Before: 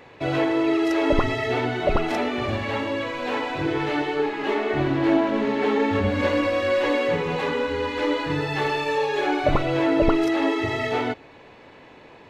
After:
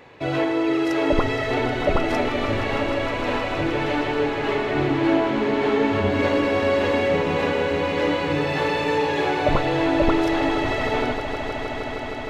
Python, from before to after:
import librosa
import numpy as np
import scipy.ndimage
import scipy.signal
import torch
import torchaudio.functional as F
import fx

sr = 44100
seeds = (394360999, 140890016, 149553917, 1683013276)

y = fx.echo_swell(x, sr, ms=156, loudest=5, wet_db=-12.0)